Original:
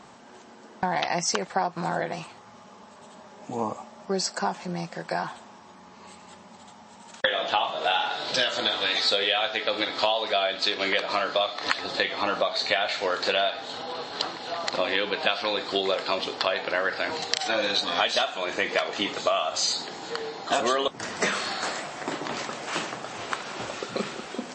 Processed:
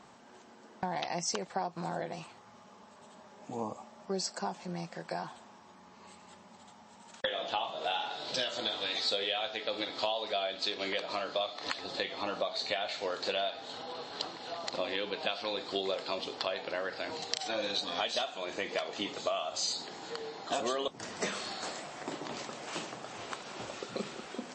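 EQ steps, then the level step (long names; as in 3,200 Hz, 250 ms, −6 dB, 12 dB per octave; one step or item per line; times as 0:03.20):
dynamic equaliser 1,600 Hz, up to −6 dB, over −39 dBFS, Q 1
−7.0 dB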